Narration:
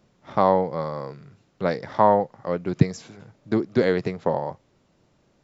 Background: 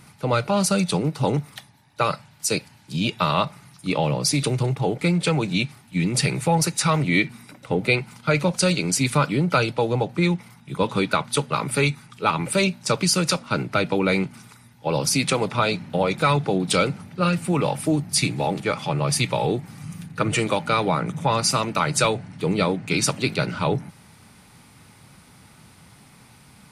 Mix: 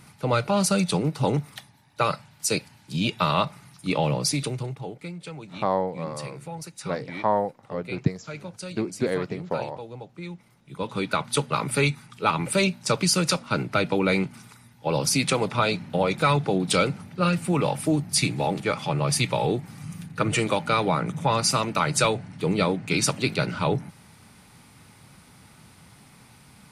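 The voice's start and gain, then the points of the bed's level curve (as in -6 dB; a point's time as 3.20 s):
5.25 s, -5.5 dB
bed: 4.18 s -1.5 dB
5.15 s -17 dB
10.23 s -17 dB
11.29 s -1.5 dB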